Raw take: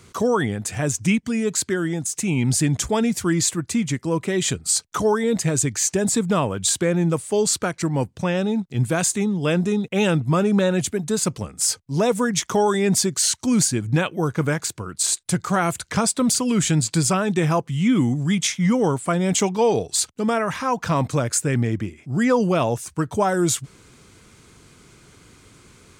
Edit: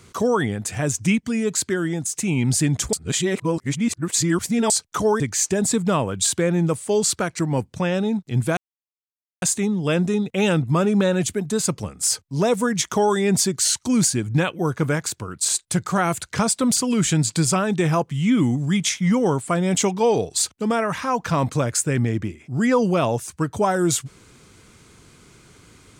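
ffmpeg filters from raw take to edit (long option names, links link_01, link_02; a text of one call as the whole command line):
ffmpeg -i in.wav -filter_complex "[0:a]asplit=5[link_01][link_02][link_03][link_04][link_05];[link_01]atrim=end=2.932[link_06];[link_02]atrim=start=2.928:end=4.702,asetpts=PTS-STARTPTS,areverse[link_07];[link_03]atrim=start=4.698:end=5.202[link_08];[link_04]atrim=start=5.628:end=9,asetpts=PTS-STARTPTS,afade=type=out:start_time=3.368:duration=0.004:curve=hsin,apad=pad_dur=0.85[link_09];[link_05]atrim=start=9,asetpts=PTS-STARTPTS,afade=type=in:duration=0.004:curve=hsin[link_10];[link_06][link_07]acrossfade=duration=0.004:curve1=hsin:curve2=hsin[link_11];[link_11][link_08]acrossfade=duration=0.004:curve1=hsin:curve2=hsin[link_12];[link_09][link_10]concat=n=2:v=0:a=1[link_13];[link_12][link_13]acrossfade=duration=0.004:curve1=hsin:curve2=hsin" out.wav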